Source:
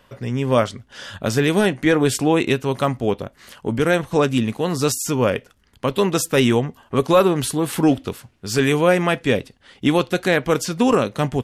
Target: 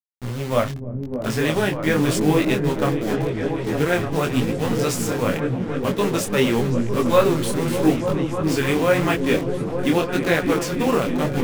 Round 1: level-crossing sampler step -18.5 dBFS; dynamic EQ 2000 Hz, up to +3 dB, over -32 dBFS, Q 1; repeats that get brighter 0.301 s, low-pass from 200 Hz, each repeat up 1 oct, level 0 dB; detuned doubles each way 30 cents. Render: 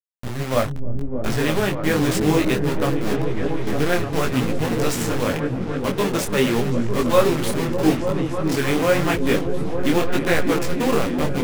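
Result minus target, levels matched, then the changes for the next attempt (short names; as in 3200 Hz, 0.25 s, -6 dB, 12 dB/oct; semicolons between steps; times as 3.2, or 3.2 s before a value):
level-crossing sampler: distortion +7 dB
change: level-crossing sampler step -24.5 dBFS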